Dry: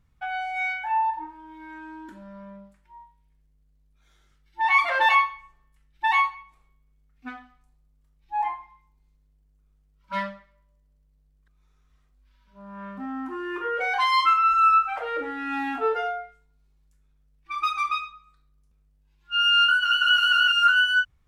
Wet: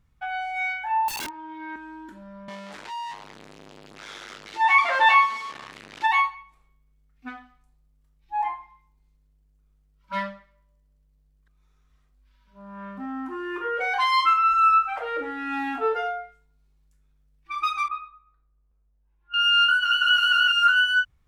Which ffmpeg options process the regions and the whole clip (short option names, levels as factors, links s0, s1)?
-filter_complex "[0:a]asettb=1/sr,asplit=3[s0][s1][s2];[s0]atrim=end=1.084[s3];[s1]atrim=start=1.08:end=1.76,asetpts=PTS-STARTPTS,afade=t=in:d=0.004:c=qsin,afade=t=out:st=0.676:d=0.004:c=qsin,acrossover=split=220 5300:gain=0.141 1 0.0794[s4][s5][s6];[s4][s5][s6]amix=inputs=3:normalize=0,acontrast=67,aeval=exprs='(mod(23.7*val(0)+1,2)-1)/23.7':c=same[s7];[s2]atrim=start=1.756[s8];[s3][s7]acrossfade=d=0.004:c1=hsin:c2=qsin[s9];[s9][s8]acrossfade=d=0.004:c1=qsin:c2=hsin,asettb=1/sr,asplit=3[s10][s11][s12];[s10]atrim=end=2.484[s13];[s11]atrim=start=2.48:end=6.07,asetpts=PTS-STARTPTS,afade=t=in:d=0.004:c=qsin,afade=t=out:st=3.586:d=0.004:c=qsin,aeval=exprs='val(0)+0.5*0.0316*sgn(val(0))':c=same,highpass=270,lowpass=5000,asplit=2[s14][s15];[s15]adelay=18,volume=0.282[s16];[s14][s16]amix=inputs=2:normalize=0,atrim=end_sample=158319[s17];[s12]atrim=start=6.066[s18];[s13][s17]acrossfade=d=0.004:c1=hsin:c2=qsin[s19];[s19][s18]acrossfade=d=0.004:c1=qsin:c2=hsin,asettb=1/sr,asplit=3[s20][s21][s22];[s20]atrim=end=17.884[s23];[s21]atrim=start=17.88:end=19.34,asetpts=PTS-STARTPTS,afade=t=in:d=0.004:c=qsin,afade=t=out:st=1.456:d=0.004:c=qsin,lowpass=1200,equalizer=f=150:w=0.64:g=-10.5[s24];[s22]atrim=start=19.336[s25];[s23][s24]acrossfade=d=0.004:c1=hsin:c2=qsin[s26];[s26][s25]acrossfade=d=0.004:c1=qsin:c2=hsin"